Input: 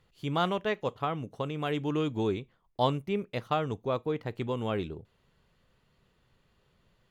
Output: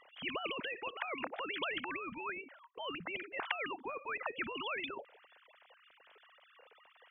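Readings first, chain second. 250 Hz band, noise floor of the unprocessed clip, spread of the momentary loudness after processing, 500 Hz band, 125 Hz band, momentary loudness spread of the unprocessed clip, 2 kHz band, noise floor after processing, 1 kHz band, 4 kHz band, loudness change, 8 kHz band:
-14.5 dB, -71 dBFS, 6 LU, -13.0 dB, -26.5 dB, 6 LU, +2.5 dB, -66 dBFS, -8.5 dB, -2.0 dB, -8.0 dB, n/a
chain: sine-wave speech; spectral compressor 10:1; gain -2.5 dB

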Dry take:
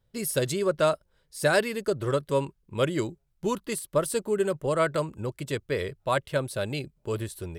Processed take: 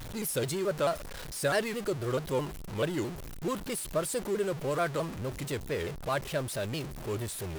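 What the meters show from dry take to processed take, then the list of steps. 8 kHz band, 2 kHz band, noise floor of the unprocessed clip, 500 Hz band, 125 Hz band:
-2.0 dB, -5.0 dB, -71 dBFS, -5.0 dB, -3.0 dB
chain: zero-crossing step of -28 dBFS; shaped vibrato saw down 4.6 Hz, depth 160 cents; gain -7 dB

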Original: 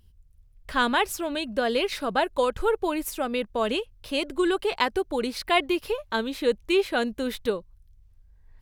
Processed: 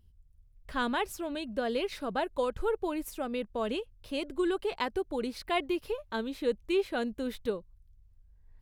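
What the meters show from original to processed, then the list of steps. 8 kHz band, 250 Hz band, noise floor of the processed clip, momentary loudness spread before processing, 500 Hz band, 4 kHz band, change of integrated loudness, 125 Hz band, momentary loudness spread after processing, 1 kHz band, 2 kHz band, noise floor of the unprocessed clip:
-10.0 dB, -5.0 dB, -61 dBFS, 6 LU, -6.0 dB, -10.0 dB, -7.0 dB, n/a, 6 LU, -8.0 dB, -9.5 dB, -57 dBFS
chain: tilt shelf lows +3 dB, about 640 Hz; gain -7 dB

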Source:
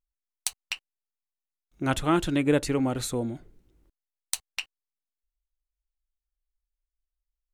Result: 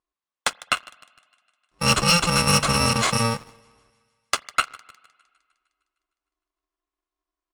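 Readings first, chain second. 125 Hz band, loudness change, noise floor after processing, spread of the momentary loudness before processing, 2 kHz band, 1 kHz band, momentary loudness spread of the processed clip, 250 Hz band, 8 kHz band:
+7.0 dB, +7.0 dB, under -85 dBFS, 13 LU, +11.5 dB, +10.5 dB, 11 LU, -0.5 dB, +9.5 dB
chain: FFT order left unsorted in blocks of 128 samples; bell 1100 Hz +10 dB 0.34 oct; downsampling 22050 Hz; HPF 240 Hz 6 dB/oct; thinning echo 0.153 s, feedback 65%, high-pass 470 Hz, level -22 dB; spring tank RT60 1.9 s, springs 41/54 ms, chirp 45 ms, DRR 17.5 dB; sample leveller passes 2; high shelf 4400 Hz -11 dB; in parallel at -3.5 dB: overloaded stage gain 28.5 dB; on the sum: gain +6.5 dB

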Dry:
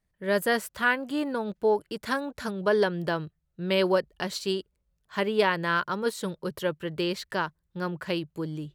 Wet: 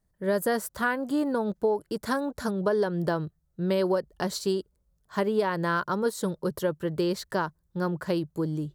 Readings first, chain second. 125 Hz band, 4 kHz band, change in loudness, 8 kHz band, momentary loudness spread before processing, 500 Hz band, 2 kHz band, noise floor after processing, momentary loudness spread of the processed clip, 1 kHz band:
+3.0 dB, -5.5 dB, 0.0 dB, +2.0 dB, 10 LU, 0.0 dB, -4.5 dB, -72 dBFS, 5 LU, -0.5 dB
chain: bell 2600 Hz -12.5 dB 1.2 oct; compressor, threshold -26 dBFS, peak gain reduction 8 dB; gain +4.5 dB

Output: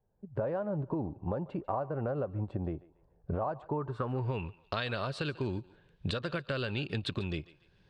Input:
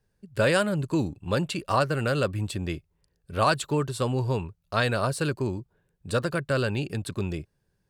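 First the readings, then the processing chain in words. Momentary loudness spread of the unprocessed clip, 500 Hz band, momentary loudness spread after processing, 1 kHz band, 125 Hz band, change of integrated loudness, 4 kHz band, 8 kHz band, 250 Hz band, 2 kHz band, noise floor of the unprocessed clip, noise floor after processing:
9 LU, -8.0 dB, 6 LU, -9.5 dB, -7.5 dB, -8.5 dB, -7.5 dB, under -20 dB, -7.5 dB, -11.0 dB, -74 dBFS, -68 dBFS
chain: recorder AGC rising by 20 dB/s; low-pass sweep 800 Hz -> 3500 Hz, 3.69–4.55; compressor, threshold -24 dBFS, peak gain reduction 10 dB; on a send: thinning echo 0.143 s, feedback 37%, high-pass 480 Hz, level -18 dB; on the sum: ending taper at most 380 dB/s; gain -6 dB

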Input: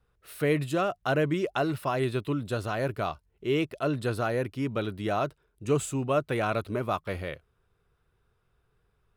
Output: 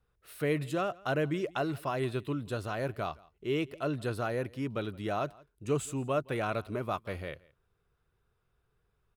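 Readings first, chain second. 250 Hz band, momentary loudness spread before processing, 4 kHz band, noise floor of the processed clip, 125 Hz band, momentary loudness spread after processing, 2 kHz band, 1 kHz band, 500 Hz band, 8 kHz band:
-4.5 dB, 8 LU, -4.5 dB, -77 dBFS, -4.5 dB, 8 LU, -4.5 dB, -4.5 dB, -4.5 dB, -4.5 dB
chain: echo 0.17 s -24 dB; gain -4.5 dB

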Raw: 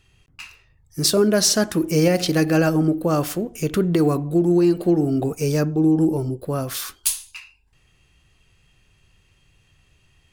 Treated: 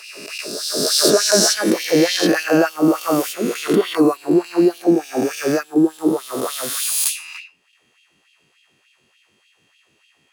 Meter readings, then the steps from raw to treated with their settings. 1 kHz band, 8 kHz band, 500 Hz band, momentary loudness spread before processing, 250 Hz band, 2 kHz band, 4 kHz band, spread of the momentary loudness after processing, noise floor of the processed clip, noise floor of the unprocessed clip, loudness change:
+4.5 dB, +5.0 dB, +3.0 dB, 9 LU, +1.5 dB, +6.0 dB, +6.5 dB, 11 LU, -62 dBFS, -61 dBFS, +2.5 dB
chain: spectral swells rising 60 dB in 2.07 s; LFO high-pass sine 3.4 Hz 220–3100 Hz; gain -2 dB

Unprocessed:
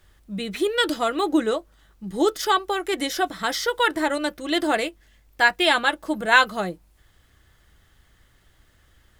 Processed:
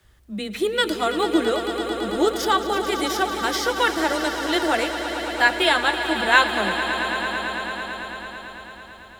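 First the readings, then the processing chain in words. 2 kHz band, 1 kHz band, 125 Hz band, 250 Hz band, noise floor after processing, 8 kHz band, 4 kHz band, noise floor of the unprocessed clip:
+2.0 dB, +2.0 dB, n/a, +1.0 dB, -44 dBFS, +2.0 dB, +2.0 dB, -60 dBFS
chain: frequency shift +13 Hz; swelling echo 0.111 s, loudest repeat 5, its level -12 dB

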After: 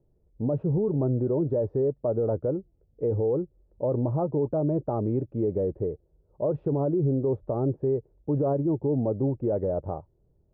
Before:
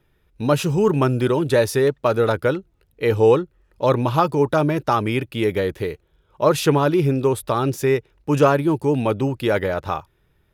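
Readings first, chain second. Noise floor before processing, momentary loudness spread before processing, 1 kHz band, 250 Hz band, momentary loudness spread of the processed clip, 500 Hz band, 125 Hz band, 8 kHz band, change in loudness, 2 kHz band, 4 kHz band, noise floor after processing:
-63 dBFS, 7 LU, -16.0 dB, -6.0 dB, 6 LU, -7.5 dB, -5.0 dB, under -40 dB, -7.5 dB, under -35 dB, under -40 dB, -67 dBFS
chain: Chebyshev low-pass 630 Hz, order 3; limiter -16 dBFS, peak gain reduction 10.5 dB; gain -2.5 dB

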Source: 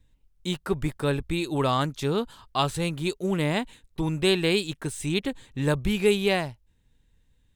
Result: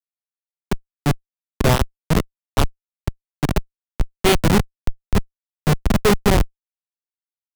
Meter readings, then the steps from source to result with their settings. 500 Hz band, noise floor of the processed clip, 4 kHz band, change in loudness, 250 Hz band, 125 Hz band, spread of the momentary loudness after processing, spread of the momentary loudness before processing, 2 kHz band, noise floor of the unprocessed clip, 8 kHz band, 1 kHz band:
+2.5 dB, under -85 dBFS, +1.5 dB, +5.0 dB, +4.0 dB, +7.5 dB, 14 LU, 9 LU, +3.5 dB, -66 dBFS, +7.5 dB, +5.0 dB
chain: on a send: swelling echo 0.139 s, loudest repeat 5, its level -16 dB; on the sum: downsampling 8000 Hz; high shelf 3100 Hz +7.5 dB; AGC gain up to 7.5 dB; envelope flanger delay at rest 8 ms, full sweep at -13.5 dBFS; Schmitt trigger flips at -13.5 dBFS; three-band expander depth 40%; gain +8 dB

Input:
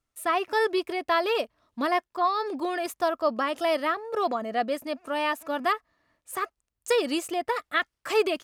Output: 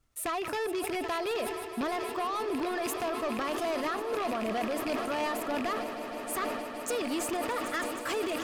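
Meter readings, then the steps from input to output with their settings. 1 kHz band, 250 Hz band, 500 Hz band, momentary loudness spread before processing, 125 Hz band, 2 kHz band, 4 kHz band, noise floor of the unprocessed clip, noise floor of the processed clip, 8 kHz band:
-6.0 dB, -1.0 dB, -5.0 dB, 7 LU, n/a, -5.5 dB, -5.0 dB, -84 dBFS, -39 dBFS, +3.0 dB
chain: rattling part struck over -41 dBFS, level -22 dBFS; low shelf 180 Hz +7 dB; compressor, threshold -30 dBFS, peak gain reduction 13 dB; soft clip -32 dBFS, distortion -12 dB; on a send: swelling echo 0.156 s, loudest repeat 8, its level -17 dB; on the sum: sustainer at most 33 dB/s; gain +4 dB

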